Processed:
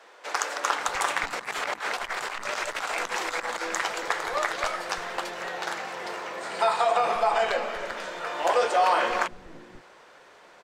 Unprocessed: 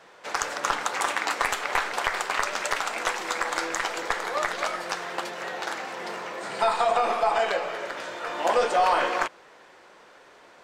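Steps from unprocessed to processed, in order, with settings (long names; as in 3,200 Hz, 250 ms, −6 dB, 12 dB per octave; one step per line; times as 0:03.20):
0:01.22–0:03.62: compressor whose output falls as the input rises −31 dBFS, ratio −0.5
multiband delay without the direct sound highs, lows 530 ms, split 260 Hz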